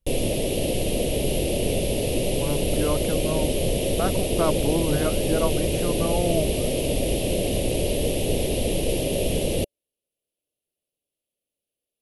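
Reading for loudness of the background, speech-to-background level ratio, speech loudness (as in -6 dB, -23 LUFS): -25.0 LUFS, -4.0 dB, -29.0 LUFS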